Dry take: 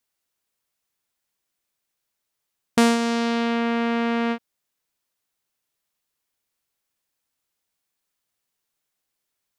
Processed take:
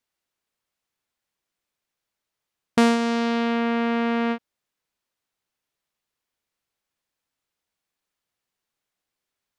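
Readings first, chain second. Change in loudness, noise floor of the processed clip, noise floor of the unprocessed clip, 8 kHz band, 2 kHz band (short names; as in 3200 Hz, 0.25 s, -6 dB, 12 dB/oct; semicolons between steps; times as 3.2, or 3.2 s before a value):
-0.5 dB, -85 dBFS, -81 dBFS, -5.0 dB, -0.5 dB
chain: high shelf 6400 Hz -9.5 dB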